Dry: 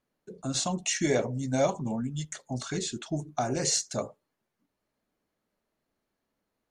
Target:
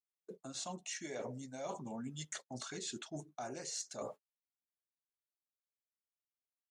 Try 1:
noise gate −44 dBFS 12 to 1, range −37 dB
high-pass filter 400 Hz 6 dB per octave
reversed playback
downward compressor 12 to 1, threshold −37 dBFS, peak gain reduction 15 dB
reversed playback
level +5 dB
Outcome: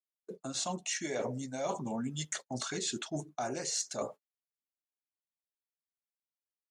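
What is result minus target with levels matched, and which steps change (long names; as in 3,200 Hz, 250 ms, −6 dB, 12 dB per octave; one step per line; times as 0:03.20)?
downward compressor: peak gain reduction −8 dB
change: downward compressor 12 to 1, threshold −45.5 dBFS, peak gain reduction 23 dB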